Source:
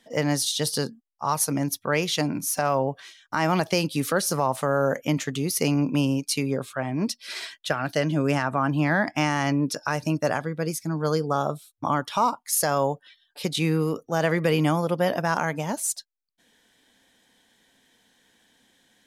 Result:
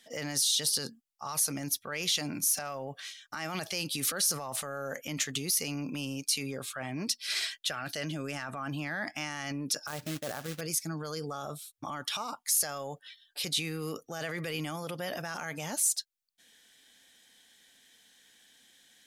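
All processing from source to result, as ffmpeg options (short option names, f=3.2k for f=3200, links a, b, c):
-filter_complex "[0:a]asettb=1/sr,asplit=3[a][b][c];[a]atrim=end=9.874[d];[b]atrim=start=9.87:end=10.61,asetpts=PTS-STARTPTS,afade=t=in:d=0.004:c=qsin,afade=t=out:st=0.736:d=0.004:c=qsin,lowpass=1.4k,acrusher=bits=3:mode=log:mix=0:aa=0.000001[e];[c]atrim=start=10.606[f];[d][e]acrossfade=d=0.004:c1=hsin:c2=qsin[g];[g][f]acrossfade=d=0.004:c1=qsin:c2=hsin,alimiter=limit=-22dB:level=0:latency=1:release=19,tiltshelf=f=1.4k:g=-6.5,bandreject=f=970:w=7.8,volume=-1.5dB"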